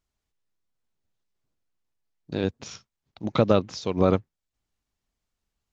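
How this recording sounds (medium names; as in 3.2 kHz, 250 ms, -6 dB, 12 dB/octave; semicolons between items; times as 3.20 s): noise floor -85 dBFS; spectral tilt -6.5 dB/octave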